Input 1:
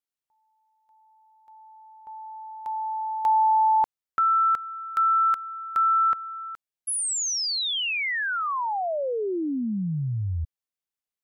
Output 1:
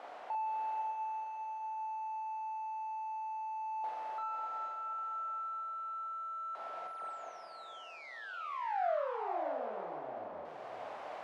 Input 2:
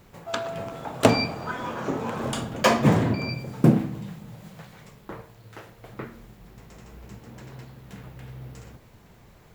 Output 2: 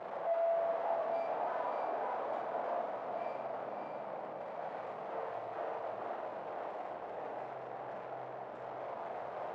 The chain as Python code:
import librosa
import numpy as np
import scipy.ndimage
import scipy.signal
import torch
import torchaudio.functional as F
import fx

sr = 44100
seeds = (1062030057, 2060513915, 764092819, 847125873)

p1 = np.sign(x) * np.sqrt(np.mean(np.square(x)))
p2 = fx.tilt_eq(p1, sr, slope=-2.0)
p3 = fx.rider(p2, sr, range_db=10, speed_s=0.5)
p4 = fx.ladder_bandpass(p3, sr, hz=770.0, resonance_pct=55)
p5 = fx.doubler(p4, sr, ms=46.0, db=-4.0)
p6 = p5 + fx.echo_diffused(p5, sr, ms=539, feedback_pct=43, wet_db=-3.5, dry=0)
y = p6 * 10.0 ** (-2.5 / 20.0)